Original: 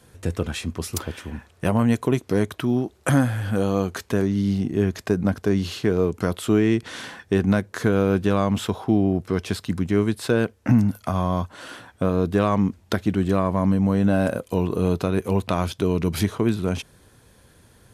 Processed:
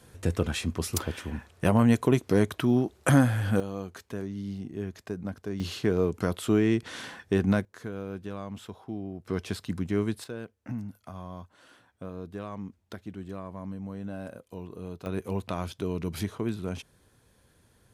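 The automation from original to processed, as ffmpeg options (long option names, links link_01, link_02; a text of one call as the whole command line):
ffmpeg -i in.wav -af "asetnsamples=nb_out_samples=441:pad=0,asendcmd='3.6 volume volume -13.5dB;5.6 volume volume -4.5dB;7.65 volume volume -17dB;9.26 volume volume -7dB;10.24 volume volume -18dB;15.06 volume volume -9.5dB',volume=-1.5dB" out.wav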